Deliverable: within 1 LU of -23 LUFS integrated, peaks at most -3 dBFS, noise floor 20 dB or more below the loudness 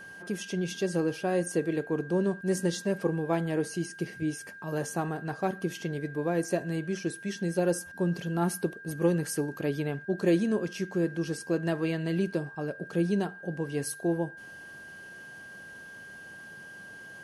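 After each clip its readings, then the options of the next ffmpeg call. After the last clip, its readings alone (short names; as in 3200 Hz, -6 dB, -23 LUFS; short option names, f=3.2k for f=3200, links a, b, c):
steady tone 1600 Hz; tone level -44 dBFS; loudness -30.5 LUFS; peak -13.5 dBFS; loudness target -23.0 LUFS
-> -af "bandreject=f=1.6k:w=30"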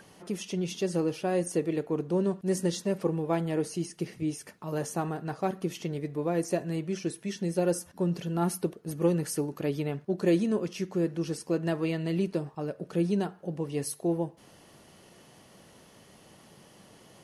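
steady tone none; loudness -31.0 LUFS; peak -13.5 dBFS; loudness target -23.0 LUFS
-> -af "volume=8dB"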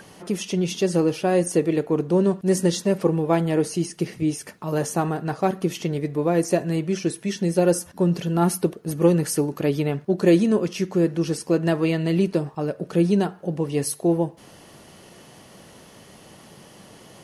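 loudness -23.0 LUFS; peak -5.5 dBFS; noise floor -48 dBFS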